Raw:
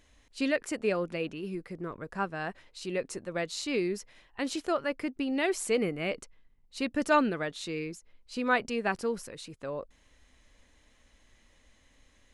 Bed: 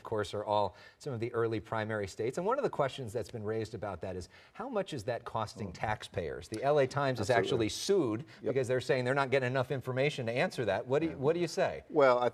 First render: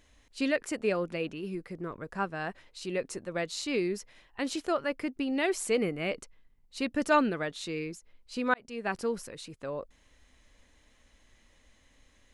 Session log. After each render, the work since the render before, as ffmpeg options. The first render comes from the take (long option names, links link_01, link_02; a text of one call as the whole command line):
ffmpeg -i in.wav -filter_complex "[0:a]asplit=2[link_01][link_02];[link_01]atrim=end=8.54,asetpts=PTS-STARTPTS,afade=type=out:start_time=8.536:duration=0.004:curve=hsin[link_03];[link_02]atrim=start=8.54,asetpts=PTS-STARTPTS,afade=type=in:duration=0.47[link_04];[link_03][link_04]concat=n=2:v=0:a=1" out.wav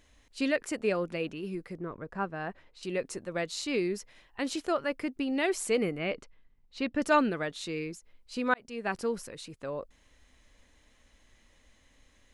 ffmpeg -i in.wav -filter_complex "[0:a]asettb=1/sr,asplit=3[link_01][link_02][link_03];[link_01]atrim=end=1.774[link_04];[link_02]atrim=start=1.77:end=2.83,asetpts=PTS-STARTPTS,afade=type=in:duration=0.004:curve=qsin,afade=type=out:start_time=1.056:duration=0.004:curve=qsin,lowpass=frequency=1800:poles=1[link_05];[link_03]atrim=start=2.826[link_06];[link_04][link_05]acrossfade=duration=0.004:curve1=hsin:curve2=qsin[link_07];[link_07][link_06]acrossfade=duration=0.004:curve1=qsin:curve2=hsin,asettb=1/sr,asplit=3[link_08][link_09][link_10];[link_08]atrim=end=5.984[link_11];[link_09]atrim=start=5.98:end=7.02,asetpts=PTS-STARTPTS,afade=type=in:duration=0.004:curve=qsin,afade=type=out:start_time=1.036:duration=0.004:curve=qsin,lowpass=4300[link_12];[link_10]atrim=start=7.016[link_13];[link_11][link_12]acrossfade=duration=0.004:curve1=hsin:curve2=qsin[link_14];[link_14][link_13]acrossfade=duration=0.004:curve1=qsin:curve2=hsin" out.wav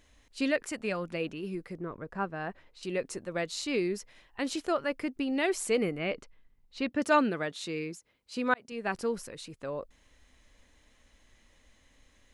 ffmpeg -i in.wav -filter_complex "[0:a]asettb=1/sr,asplit=3[link_01][link_02][link_03];[link_01]atrim=end=0.674[link_04];[link_02]atrim=start=0.67:end=1.13,asetpts=PTS-STARTPTS,afade=type=in:duration=0.004:curve=qsin,afade=type=out:start_time=0.456:duration=0.004:curve=qsin,equalizer=frequency=420:width_type=o:width=0.99:gain=-7[link_05];[link_03]atrim=start=1.126[link_06];[link_04][link_05]acrossfade=duration=0.004:curve1=hsin:curve2=qsin[link_07];[link_07][link_06]acrossfade=duration=0.004:curve1=qsin:curve2=hsin,asettb=1/sr,asplit=3[link_08][link_09][link_10];[link_08]atrim=end=6.894[link_11];[link_09]atrim=start=6.89:end=8.72,asetpts=PTS-STARTPTS,afade=type=in:duration=0.004:curve=qsin,afade=type=out:start_time=1.826:duration=0.004:curve=qsin,highpass=95[link_12];[link_10]atrim=start=8.716[link_13];[link_11][link_12]acrossfade=duration=0.004:curve1=hsin:curve2=qsin[link_14];[link_14][link_13]acrossfade=duration=0.004:curve1=qsin:curve2=hsin" out.wav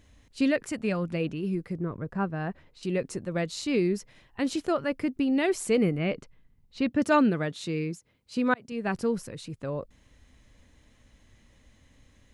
ffmpeg -i in.wav -af "equalizer=frequency=120:width=0.54:gain=12" out.wav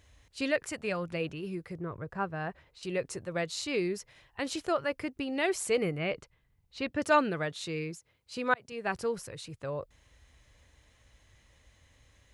ffmpeg -i in.wav -af "highpass=42,equalizer=frequency=230:width_type=o:width=1.1:gain=-12.5" out.wav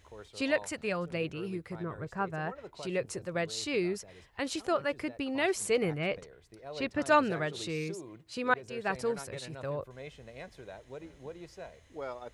ffmpeg -i in.wav -i bed.wav -filter_complex "[1:a]volume=-15dB[link_01];[0:a][link_01]amix=inputs=2:normalize=0" out.wav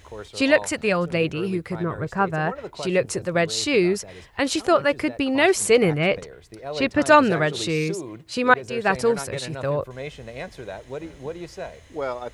ffmpeg -i in.wav -af "volume=11.5dB,alimiter=limit=-3dB:level=0:latency=1" out.wav